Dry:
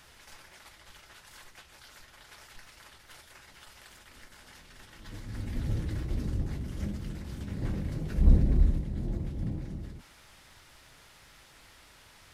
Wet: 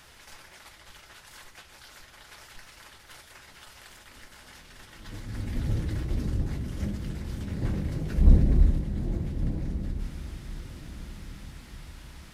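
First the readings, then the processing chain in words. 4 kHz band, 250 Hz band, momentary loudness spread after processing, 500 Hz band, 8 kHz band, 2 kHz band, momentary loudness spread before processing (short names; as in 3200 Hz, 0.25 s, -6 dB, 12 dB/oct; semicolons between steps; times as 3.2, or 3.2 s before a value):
+3.0 dB, +3.5 dB, 24 LU, +3.5 dB, n/a, +3.0 dB, 25 LU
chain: diffused feedback echo 1.393 s, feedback 40%, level -13 dB; gain +3 dB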